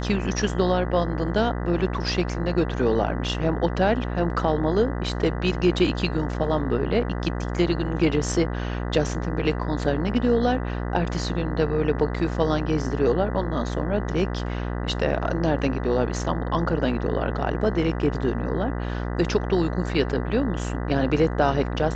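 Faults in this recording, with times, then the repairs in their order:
buzz 60 Hz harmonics 33 -28 dBFS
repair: de-hum 60 Hz, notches 33

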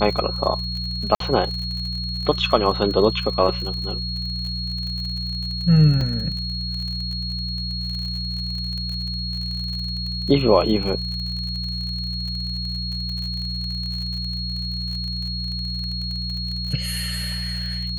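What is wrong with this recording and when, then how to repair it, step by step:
crackle 43 per s -29 dBFS
hum 60 Hz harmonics 3 -29 dBFS
whine 4.3 kHz -28 dBFS
1.15–1.20 s: dropout 53 ms
6.01 s: dropout 3.2 ms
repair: de-click; de-hum 60 Hz, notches 3; band-stop 4.3 kHz, Q 30; interpolate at 1.15 s, 53 ms; interpolate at 6.01 s, 3.2 ms

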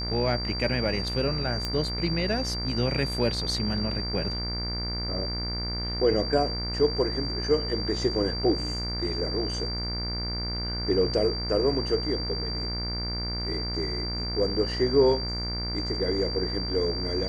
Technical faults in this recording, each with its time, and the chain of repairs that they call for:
buzz 60 Hz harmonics 39 -33 dBFS
whine 4.7 kHz -32 dBFS
1.65 s: pop -15 dBFS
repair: de-click; de-hum 60 Hz, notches 39; band-stop 4.7 kHz, Q 30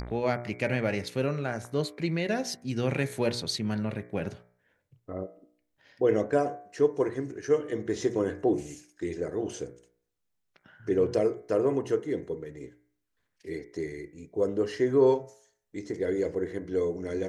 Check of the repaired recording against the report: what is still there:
nothing left

